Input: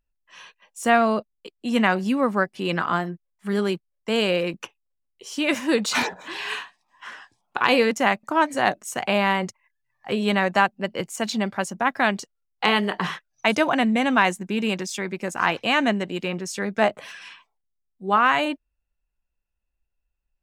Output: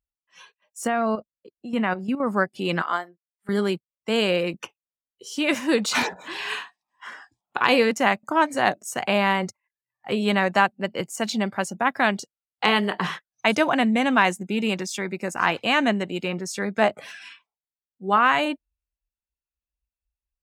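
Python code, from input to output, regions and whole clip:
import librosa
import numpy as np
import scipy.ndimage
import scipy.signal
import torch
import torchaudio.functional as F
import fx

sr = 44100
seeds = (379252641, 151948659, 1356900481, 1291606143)

y = fx.chain(x, sr, fx.level_steps(step_db=11),
    fx.high_shelf(hz=3700.0, db=-11.0), at=(0.87, 2.27))
y = fx.chain(y, sr, fx.highpass(hz=480.0, slope=12),
    fx.upward_expand(threshold_db=-42.0, expansion=1.5), at=(2.82, 3.49))
y = fx.noise_reduce_blind(y, sr, reduce_db=13)
y = scipy.signal.sosfilt(scipy.signal.butter(2, 40.0, 'highpass', fs=sr, output='sos'), y)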